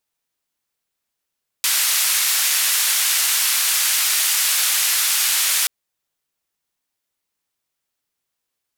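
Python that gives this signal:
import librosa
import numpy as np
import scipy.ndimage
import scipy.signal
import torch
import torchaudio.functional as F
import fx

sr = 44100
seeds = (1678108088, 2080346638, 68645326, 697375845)

y = fx.band_noise(sr, seeds[0], length_s=4.03, low_hz=1500.0, high_hz=14000.0, level_db=-18.5)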